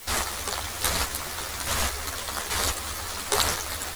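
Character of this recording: chopped level 1.2 Hz, depth 60%, duty 25%; a quantiser's noise floor 8-bit, dither triangular; a shimmering, thickened sound

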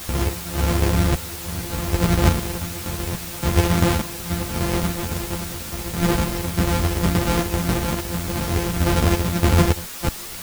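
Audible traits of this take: a buzz of ramps at a fixed pitch in blocks of 256 samples; random-step tremolo, depth 90%; a quantiser's noise floor 6-bit, dither triangular; a shimmering, thickened sound

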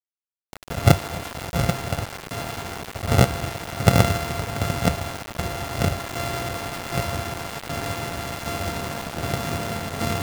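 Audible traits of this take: a buzz of ramps at a fixed pitch in blocks of 64 samples; tremolo saw down 1.3 Hz, depth 55%; a quantiser's noise floor 6-bit, dither none

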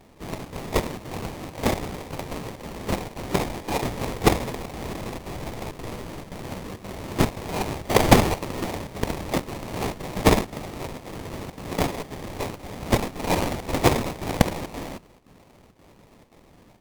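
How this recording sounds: phasing stages 2, 0.2 Hz, lowest notch 590–1500 Hz; aliases and images of a low sample rate 1500 Hz, jitter 20%; chopped level 1.9 Hz, depth 60%, duty 85%; Vorbis

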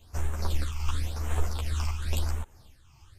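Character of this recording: phasing stages 8, 0.93 Hz, lowest notch 500–4700 Hz; tremolo triangle 2.4 Hz, depth 50%; a shimmering, thickened sound

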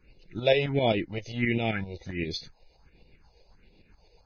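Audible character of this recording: tremolo saw up 7.6 Hz, depth 60%; phasing stages 4, 1.4 Hz, lowest notch 220–1500 Hz; Vorbis

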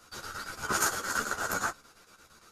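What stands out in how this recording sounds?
chopped level 8.7 Hz, depth 60%, duty 70%; a shimmering, thickened sound

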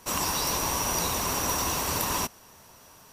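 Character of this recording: noise floor -53 dBFS; spectral tilt -2.0 dB/oct

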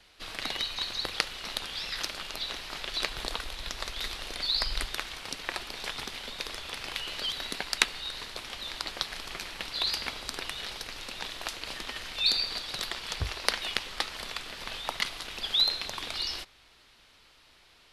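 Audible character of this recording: noise floor -59 dBFS; spectral tilt -2.5 dB/oct

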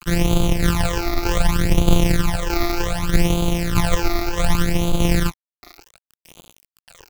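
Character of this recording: a buzz of ramps at a fixed pitch in blocks of 256 samples; tremolo saw down 1.6 Hz, depth 50%; a quantiser's noise floor 6-bit, dither none; phasing stages 12, 0.66 Hz, lowest notch 160–1800 Hz

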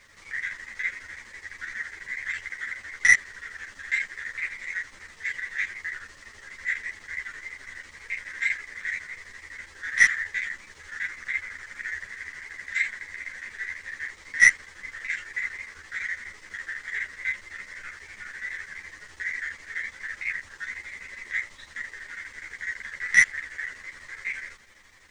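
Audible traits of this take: chopped level 12 Hz, depth 65%, duty 75%; a quantiser's noise floor 12-bit, dither none; a shimmering, thickened sound

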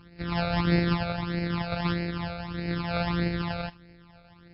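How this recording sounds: a buzz of ramps at a fixed pitch in blocks of 256 samples; phasing stages 12, 1.6 Hz, lowest notch 310–1100 Hz; MP3

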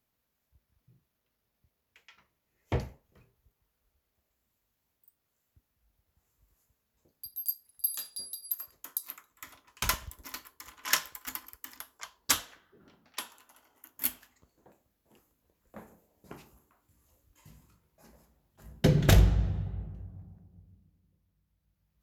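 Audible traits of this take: noise floor -81 dBFS; spectral tilt -3.5 dB/oct

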